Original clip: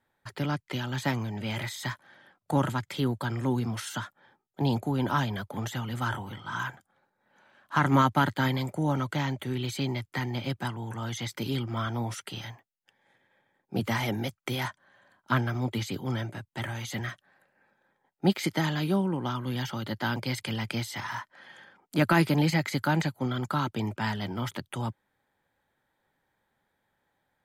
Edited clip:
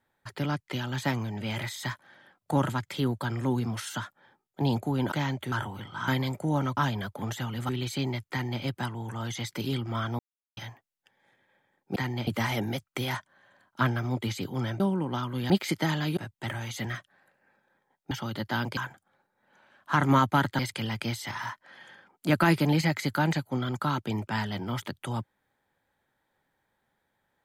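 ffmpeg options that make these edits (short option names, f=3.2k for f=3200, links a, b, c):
-filter_complex "[0:a]asplit=16[a][b][c][d][e][f][g][h][i][j][k][l][m][n][o][p];[a]atrim=end=5.122[q];[b]atrim=start=9.108:end=9.512[r];[c]atrim=start=6.038:end=6.602[s];[d]atrim=start=8.418:end=9.112[t];[e]atrim=start=5.118:end=6.042[u];[f]atrim=start=9.508:end=12.01,asetpts=PTS-STARTPTS,afade=t=out:st=2.498:d=0.004:c=hsin[v];[g]atrim=start=12.01:end=12.39,asetpts=PTS-STARTPTS,volume=0[w];[h]atrim=start=12.39:end=13.782,asetpts=PTS-STARTPTS,afade=t=in:d=0.004:c=hsin[x];[i]atrim=start=10.128:end=10.442[y];[j]atrim=start=13.778:end=16.312[z];[k]atrim=start=18.918:end=19.622[aa];[l]atrim=start=18.248:end=18.922[ab];[m]atrim=start=16.308:end=18.252[ac];[n]atrim=start=19.618:end=20.282[ad];[o]atrim=start=6.598:end=8.422[ae];[p]atrim=start=20.278[af];[q][r]acrossfade=d=0.004:c1=hsin:c2=hsin[ag];[ag][s]acrossfade=d=0.004:c1=hsin:c2=hsin[ah];[ah][t]acrossfade=d=0.004:c1=hsin:c2=hsin[ai];[ai][u]acrossfade=d=0.004:c1=hsin:c2=hsin[aj];[v][w][x]concat=n=3:v=0:a=1[ak];[aj][ak]acrossfade=d=0.004:c1=hsin:c2=hsin[al];[al][y]acrossfade=d=0.004:c1=hsin:c2=hsin[am];[am][z]acrossfade=d=0.004:c1=hsin:c2=hsin[an];[an][aa]acrossfade=d=0.004:c1=hsin:c2=hsin[ao];[ao][ab]acrossfade=d=0.004:c1=hsin:c2=hsin[ap];[ap][ac]acrossfade=d=0.004:c1=hsin:c2=hsin[aq];[aq][ad]acrossfade=d=0.004:c1=hsin:c2=hsin[ar];[ar][ae]acrossfade=d=0.004:c1=hsin:c2=hsin[as];[as][af]acrossfade=d=0.004:c1=hsin:c2=hsin"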